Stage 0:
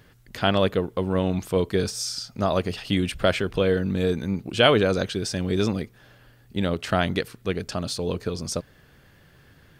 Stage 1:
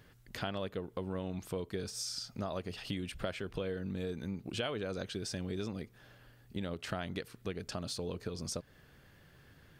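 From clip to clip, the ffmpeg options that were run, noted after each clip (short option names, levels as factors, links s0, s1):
-af "acompressor=threshold=0.0316:ratio=4,volume=0.501"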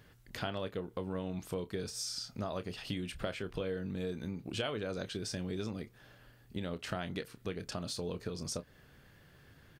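-filter_complex "[0:a]asplit=2[s0][s1];[s1]adelay=28,volume=0.251[s2];[s0][s2]amix=inputs=2:normalize=0"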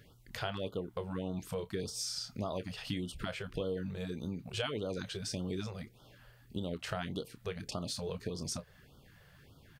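-af "afftfilt=real='re*(1-between(b*sr/1024,240*pow(2100/240,0.5+0.5*sin(2*PI*1.7*pts/sr))/1.41,240*pow(2100/240,0.5+0.5*sin(2*PI*1.7*pts/sr))*1.41))':imag='im*(1-between(b*sr/1024,240*pow(2100/240,0.5+0.5*sin(2*PI*1.7*pts/sr))/1.41,240*pow(2100/240,0.5+0.5*sin(2*PI*1.7*pts/sr))*1.41))':win_size=1024:overlap=0.75,volume=1.12"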